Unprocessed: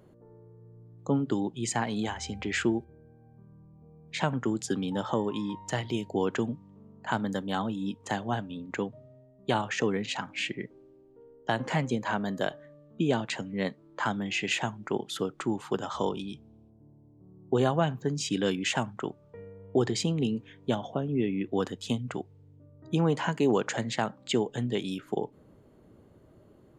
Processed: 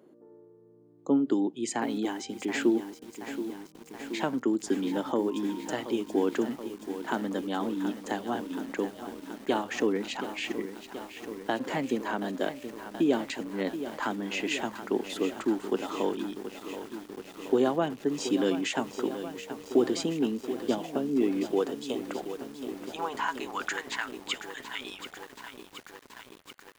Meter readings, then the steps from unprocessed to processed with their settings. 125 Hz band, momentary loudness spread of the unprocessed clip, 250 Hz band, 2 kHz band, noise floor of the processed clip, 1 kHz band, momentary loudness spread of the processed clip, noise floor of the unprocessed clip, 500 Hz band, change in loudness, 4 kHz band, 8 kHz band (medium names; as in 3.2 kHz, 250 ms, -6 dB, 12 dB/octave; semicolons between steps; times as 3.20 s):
-11.5 dB, 10 LU, +1.5 dB, -1.0 dB, -55 dBFS, -1.0 dB, 14 LU, -58 dBFS, +1.0 dB, -0.5 dB, -2.0 dB, -2.0 dB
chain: high-pass sweep 290 Hz -> 1.9 kHz, 21.21–24.21 s; bit-crushed delay 727 ms, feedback 80%, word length 7-bit, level -10.5 dB; trim -3 dB